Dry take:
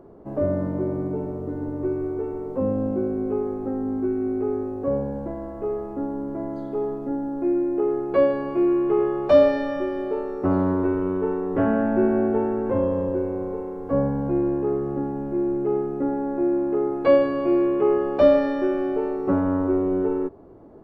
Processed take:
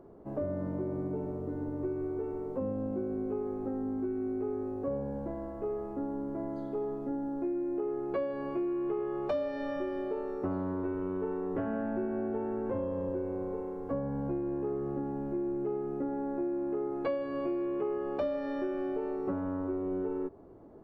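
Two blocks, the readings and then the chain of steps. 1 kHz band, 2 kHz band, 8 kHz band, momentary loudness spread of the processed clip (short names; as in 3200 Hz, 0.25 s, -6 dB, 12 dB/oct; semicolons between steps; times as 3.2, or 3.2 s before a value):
-10.5 dB, -11.5 dB, n/a, 3 LU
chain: compressor 6:1, threshold -24 dBFS, peak gain reduction 13 dB; gain -6 dB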